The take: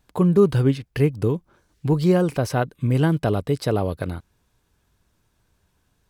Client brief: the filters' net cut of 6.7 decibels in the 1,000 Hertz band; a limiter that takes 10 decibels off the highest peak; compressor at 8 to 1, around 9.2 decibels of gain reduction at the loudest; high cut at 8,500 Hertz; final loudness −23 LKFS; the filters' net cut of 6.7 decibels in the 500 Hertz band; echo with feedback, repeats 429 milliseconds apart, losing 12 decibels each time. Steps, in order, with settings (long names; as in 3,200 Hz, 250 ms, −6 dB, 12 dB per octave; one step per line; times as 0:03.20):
low-pass filter 8,500 Hz
parametric band 500 Hz −8 dB
parametric band 1,000 Hz −6 dB
downward compressor 8 to 1, threshold −25 dBFS
brickwall limiter −27.5 dBFS
repeating echo 429 ms, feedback 25%, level −12 dB
level +13.5 dB